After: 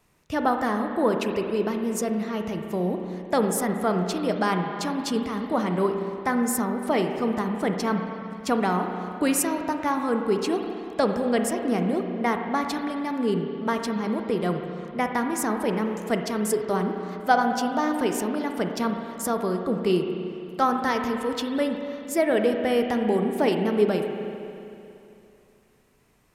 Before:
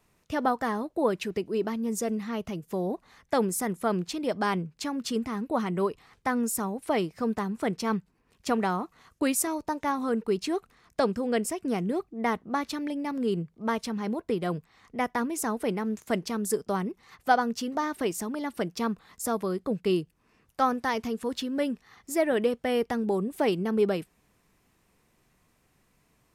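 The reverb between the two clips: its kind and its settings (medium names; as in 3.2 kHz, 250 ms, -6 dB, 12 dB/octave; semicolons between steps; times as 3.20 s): spring tank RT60 2.8 s, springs 33/56 ms, chirp 60 ms, DRR 4 dB; trim +2.5 dB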